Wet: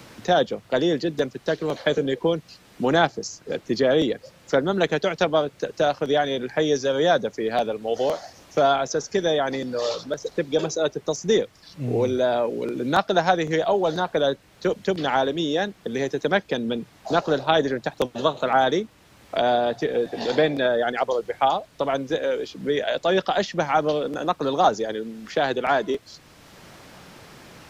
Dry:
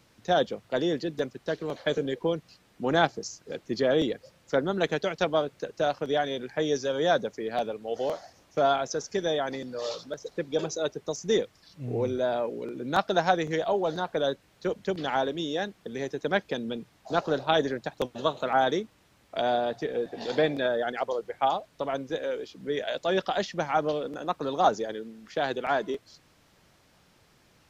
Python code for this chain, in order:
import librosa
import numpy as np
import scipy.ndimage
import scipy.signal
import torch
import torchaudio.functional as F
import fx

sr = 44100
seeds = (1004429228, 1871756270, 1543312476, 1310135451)

y = fx.band_squash(x, sr, depth_pct=40)
y = y * 10.0 ** (5.5 / 20.0)